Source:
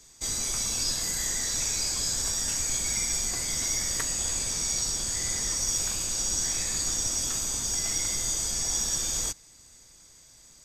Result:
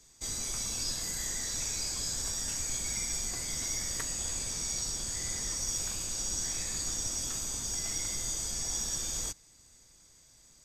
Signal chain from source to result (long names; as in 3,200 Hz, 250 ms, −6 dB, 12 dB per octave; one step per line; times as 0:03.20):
low-shelf EQ 380 Hz +2.5 dB
level −6 dB